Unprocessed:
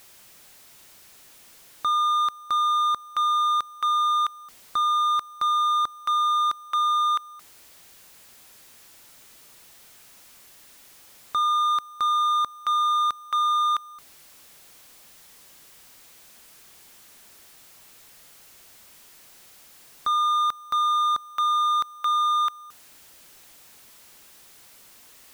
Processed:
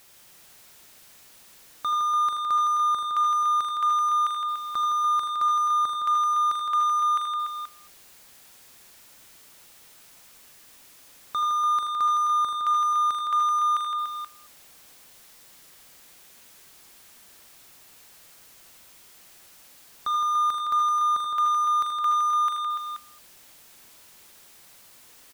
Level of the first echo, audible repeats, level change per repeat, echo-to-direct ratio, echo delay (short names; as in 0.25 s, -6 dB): -14.0 dB, 5, no steady repeat, -1.0 dB, 42 ms